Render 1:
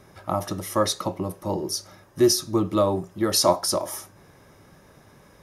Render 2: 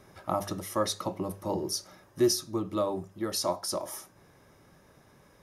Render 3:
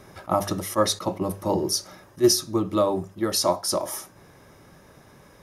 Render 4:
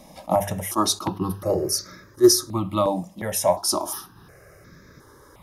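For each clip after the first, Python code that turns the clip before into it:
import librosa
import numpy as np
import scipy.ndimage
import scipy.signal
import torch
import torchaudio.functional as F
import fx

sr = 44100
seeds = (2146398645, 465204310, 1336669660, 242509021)

y1 = fx.hum_notches(x, sr, base_hz=50, count=4)
y1 = fx.rider(y1, sr, range_db=4, speed_s=0.5)
y1 = F.gain(torch.from_numpy(y1), -7.5).numpy()
y2 = fx.attack_slew(y1, sr, db_per_s=430.0)
y2 = F.gain(torch.from_numpy(y2), 7.5).numpy()
y3 = fx.phaser_held(y2, sr, hz=2.8, low_hz=390.0, high_hz=2900.0)
y3 = F.gain(torch.from_numpy(y3), 4.5).numpy()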